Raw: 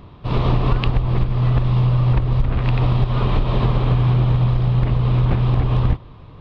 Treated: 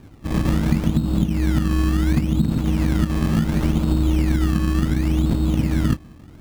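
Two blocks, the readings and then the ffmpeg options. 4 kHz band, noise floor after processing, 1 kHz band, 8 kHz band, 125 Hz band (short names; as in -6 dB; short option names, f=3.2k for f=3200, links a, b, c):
-1.0 dB, -44 dBFS, -6.5 dB, n/a, -5.0 dB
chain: -af "aeval=exprs='val(0)*sin(2*PI*190*n/s)':c=same,acrusher=samples=21:mix=1:aa=0.000001:lfo=1:lforange=21:lforate=0.7,bass=f=250:g=7,treble=f=4k:g=-2,volume=-4.5dB"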